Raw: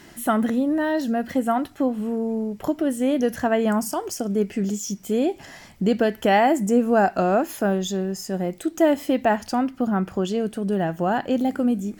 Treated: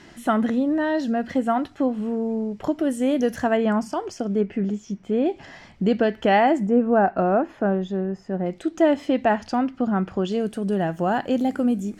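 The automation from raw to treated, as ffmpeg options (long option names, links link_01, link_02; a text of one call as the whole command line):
ffmpeg -i in.wav -af "asetnsamples=nb_out_samples=441:pad=0,asendcmd='2.79 lowpass f 9700;3.57 lowpass f 4000;4.41 lowpass f 2300;5.26 lowpass f 4200;6.67 lowpass f 1700;8.46 lowpass f 4700;10.32 lowpass f 11000',lowpass=5900" out.wav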